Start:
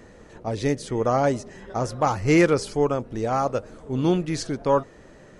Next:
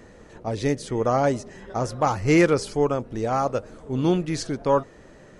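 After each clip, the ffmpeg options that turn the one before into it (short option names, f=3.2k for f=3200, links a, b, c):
-af anull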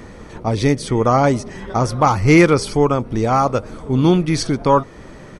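-filter_complex "[0:a]bandreject=f=7.1k:w=6.3,aecho=1:1:0.9:0.3,asplit=2[a][b];[b]acompressor=threshold=-28dB:ratio=6,volume=-2.5dB[c];[a][c]amix=inputs=2:normalize=0,volume=5.5dB"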